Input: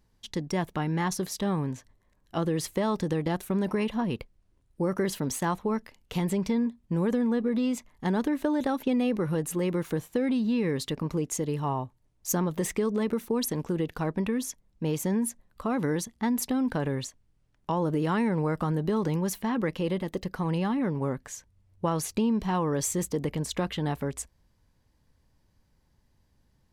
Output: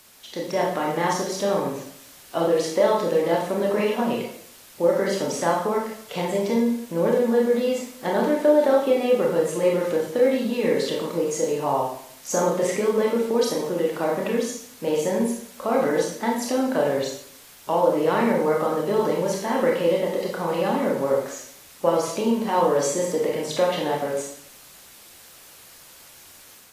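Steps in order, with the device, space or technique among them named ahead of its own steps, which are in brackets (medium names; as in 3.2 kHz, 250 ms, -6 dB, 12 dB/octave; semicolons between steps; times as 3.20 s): filmed off a television (band-pass 290–6900 Hz; peaking EQ 590 Hz +10 dB 0.43 oct; reverberation RT60 0.60 s, pre-delay 24 ms, DRR -2 dB; white noise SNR 24 dB; level rider gain up to 4 dB; trim -2 dB; AAC 48 kbps 32 kHz)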